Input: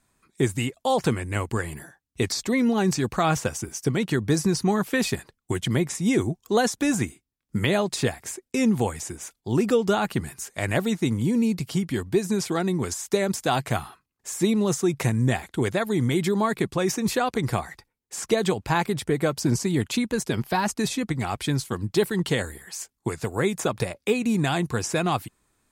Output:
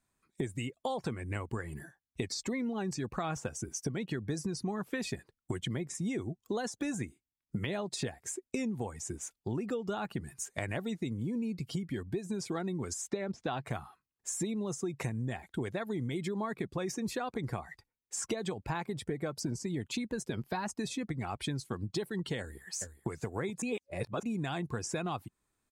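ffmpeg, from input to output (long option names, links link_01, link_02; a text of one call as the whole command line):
ffmpeg -i in.wav -filter_complex "[0:a]asettb=1/sr,asplit=3[link_01][link_02][link_03];[link_01]atrim=end=13.074[link_04];[link_02]atrim=start=13.07:end=13.65,asetpts=PTS-STARTPTS,afade=type=in:duration=0.004:curve=qsin,afade=type=out:start_time=0.576:duration=0.004:curve=qsin,lowpass=4200[link_05];[link_03]atrim=start=13.646[link_06];[link_04][link_05]acrossfade=duration=0.004:curve1=hsin:curve2=qsin[link_07];[link_07][link_06]acrossfade=duration=0.004:curve1=qsin:curve2=hsin,asplit=2[link_08][link_09];[link_09]afade=type=in:start_time=22.39:duration=0.01,afade=type=out:start_time=23.08:duration=0.01,aecho=0:1:420|840|1260:0.251189|0.0627972|0.0156993[link_10];[link_08][link_10]amix=inputs=2:normalize=0,asplit=3[link_11][link_12][link_13];[link_11]atrim=end=23.622[link_14];[link_12]atrim=start=23.618:end=24.232,asetpts=PTS-STARTPTS,areverse[link_15];[link_13]atrim=start=24.228[link_16];[link_14][link_15]acrossfade=duration=0.004:curve1=hsin:curve2=hsin[link_17];[link_17][link_16]acrossfade=duration=0.004:curve1=hsin:curve2=hsin,afftdn=noise_reduction=12:noise_floor=-37,acompressor=threshold=-33dB:ratio=6" out.wav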